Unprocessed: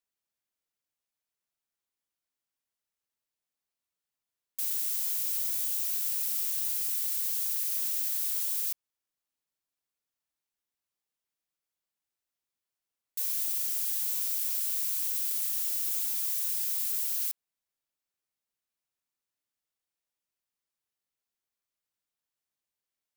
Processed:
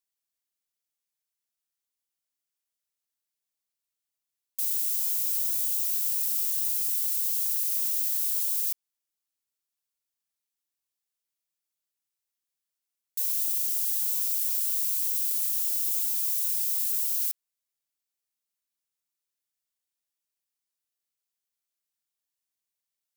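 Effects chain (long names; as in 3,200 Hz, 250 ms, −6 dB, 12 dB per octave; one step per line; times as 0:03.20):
high-shelf EQ 2,800 Hz +10 dB
level −6.5 dB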